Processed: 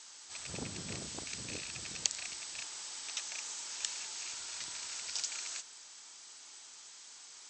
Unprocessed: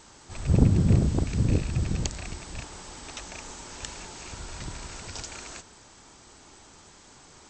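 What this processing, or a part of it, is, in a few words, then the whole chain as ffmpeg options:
piezo pickup straight into a mixer: -af "lowpass=6200,aderivative,volume=7.5dB"

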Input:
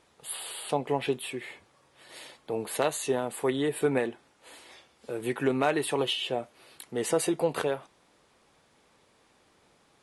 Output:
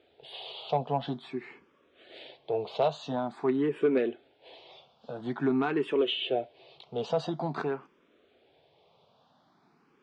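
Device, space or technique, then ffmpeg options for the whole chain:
barber-pole phaser into a guitar amplifier: -filter_complex "[0:a]asplit=2[link_01][link_02];[link_02]afreqshift=0.48[link_03];[link_01][link_03]amix=inputs=2:normalize=1,asoftclip=type=tanh:threshold=-19.5dB,highpass=88,equalizer=frequency=150:width_type=q:width=4:gain=5,equalizer=frequency=250:width_type=q:width=4:gain=4,equalizer=frequency=400:width_type=q:width=4:gain=6,equalizer=frequency=680:width_type=q:width=4:gain=7,equalizer=frequency=1900:width_type=q:width=4:gain=-6,equalizer=frequency=3400:width_type=q:width=4:gain=3,lowpass=frequency=4300:width=0.5412,lowpass=frequency=4300:width=1.3066"

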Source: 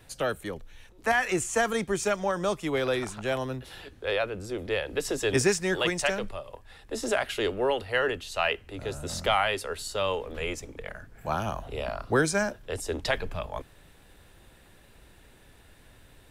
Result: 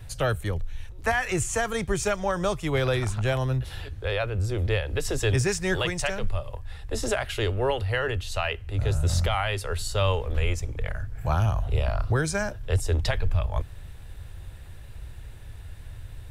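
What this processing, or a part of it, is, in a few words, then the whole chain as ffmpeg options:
car stereo with a boomy subwoofer: -af "lowshelf=frequency=150:width_type=q:width=1.5:gain=13,alimiter=limit=-17dB:level=0:latency=1:release=352,volume=3dB"

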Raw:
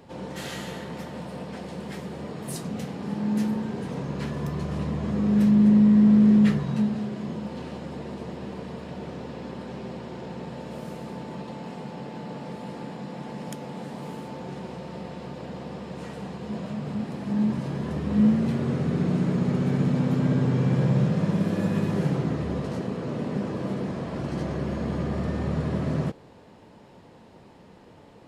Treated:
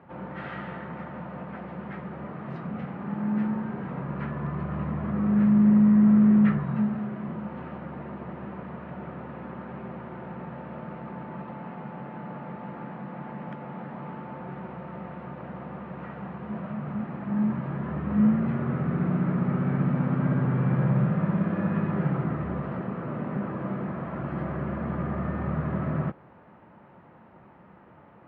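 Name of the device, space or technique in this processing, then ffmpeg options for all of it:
bass cabinet: -af "highpass=68,equalizer=frequency=100:width_type=q:width=4:gain=-5,equalizer=frequency=270:width_type=q:width=4:gain=-5,equalizer=frequency=450:width_type=q:width=4:gain=-8,equalizer=frequency=1300:width_type=q:width=4:gain=7,lowpass=frequency=2200:width=0.5412,lowpass=frequency=2200:width=1.3066"

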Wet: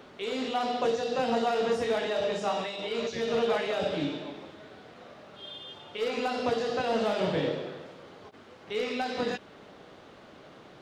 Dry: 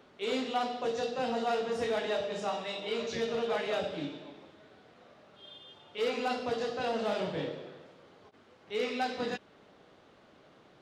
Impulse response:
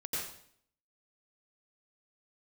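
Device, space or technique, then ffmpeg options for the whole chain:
de-esser from a sidechain: -filter_complex "[0:a]asplit=2[link_01][link_02];[link_02]highpass=5000,apad=whole_len=476976[link_03];[link_01][link_03]sidechaincompress=threshold=-54dB:ratio=8:attack=2.5:release=31,volume=8.5dB"

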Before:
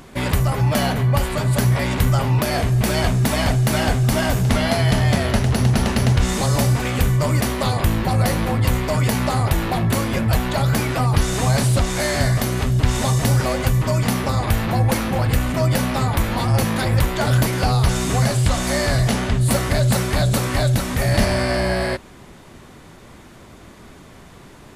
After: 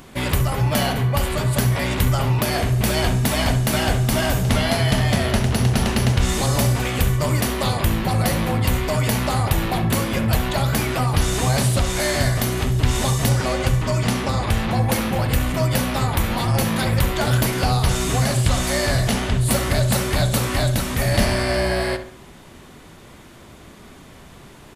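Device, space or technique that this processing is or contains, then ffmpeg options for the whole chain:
presence and air boost: -filter_complex "[0:a]asettb=1/sr,asplit=3[link_01][link_02][link_03];[link_01]atrim=end=13.294[link_04];[link_02]atrim=start=13.29:end=14.82,asetpts=PTS-STARTPTS,afade=type=in:duration=0.004:curve=qsin,afade=type=out:start_time=1.526:duration=0.004:curve=qsin,lowpass=9400[link_05];[link_03]atrim=start=14.816[link_06];[link_04][link_05]acrossfade=duration=0.004:curve1=hsin:curve2=qsin[link_07];[link_07][link_06]acrossfade=duration=0.004:curve1=qsin:curve2=hsin,equalizer=frequency=3100:width_type=o:width=0.82:gain=3,highshelf=frequency=10000:gain=6,asplit=2[link_08][link_09];[link_09]adelay=67,lowpass=frequency=2300:poles=1,volume=-9dB,asplit=2[link_10][link_11];[link_11]adelay=67,lowpass=frequency=2300:poles=1,volume=0.43,asplit=2[link_12][link_13];[link_13]adelay=67,lowpass=frequency=2300:poles=1,volume=0.43,asplit=2[link_14][link_15];[link_15]adelay=67,lowpass=frequency=2300:poles=1,volume=0.43,asplit=2[link_16][link_17];[link_17]adelay=67,lowpass=frequency=2300:poles=1,volume=0.43[link_18];[link_08][link_10][link_12][link_14][link_16][link_18]amix=inputs=6:normalize=0,volume=-1.5dB"

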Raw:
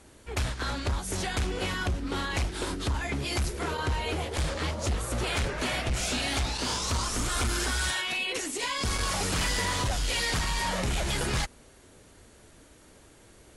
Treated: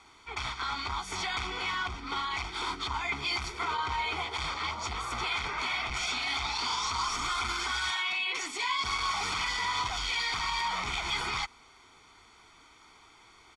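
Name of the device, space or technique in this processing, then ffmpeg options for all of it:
DJ mixer with the lows and highs turned down: -filter_complex "[0:a]acrossover=split=500 5700:gain=0.112 1 0.1[link_01][link_02][link_03];[link_01][link_02][link_03]amix=inputs=3:normalize=0,alimiter=level_in=3dB:limit=-24dB:level=0:latency=1:release=41,volume=-3dB,lowpass=9600,aecho=1:1:0.9:0.89,volume=2dB"

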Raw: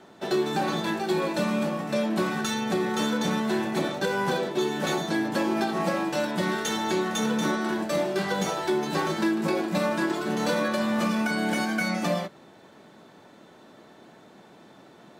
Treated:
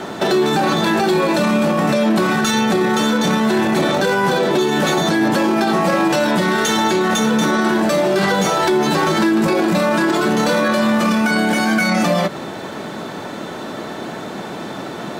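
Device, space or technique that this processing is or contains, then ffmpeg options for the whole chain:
mastering chain: -af "equalizer=frequency=1300:width_type=o:width=0.29:gain=2,acompressor=threshold=-29dB:ratio=2,asoftclip=type=hard:threshold=-20.5dB,alimiter=level_in=30.5dB:limit=-1dB:release=50:level=0:latency=1,volume=-7.5dB"

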